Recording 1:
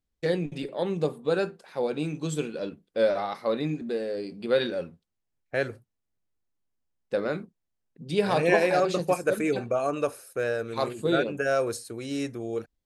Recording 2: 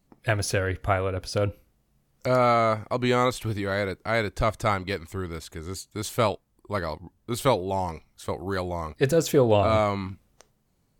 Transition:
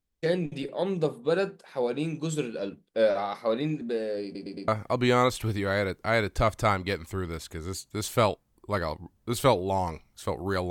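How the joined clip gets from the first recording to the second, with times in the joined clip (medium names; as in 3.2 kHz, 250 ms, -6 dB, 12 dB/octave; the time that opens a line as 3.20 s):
recording 1
4.24 s: stutter in place 0.11 s, 4 plays
4.68 s: go over to recording 2 from 2.69 s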